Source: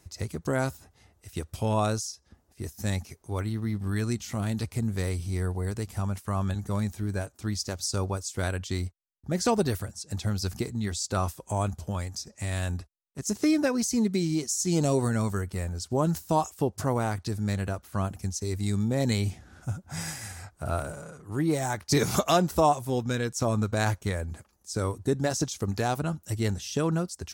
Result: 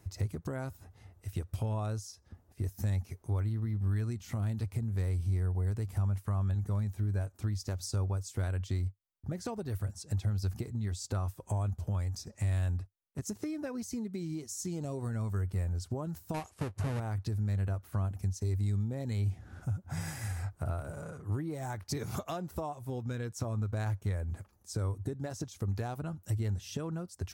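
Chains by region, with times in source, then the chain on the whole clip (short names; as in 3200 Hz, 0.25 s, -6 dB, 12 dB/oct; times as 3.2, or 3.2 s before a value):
16.34–17 half-waves squared off + brick-wall FIR low-pass 12000 Hz + notch 3400 Hz, Q 21
whole clip: bell 5900 Hz -7 dB 2.3 oct; compressor 6:1, threshold -36 dBFS; bell 98 Hz +10 dB 0.59 oct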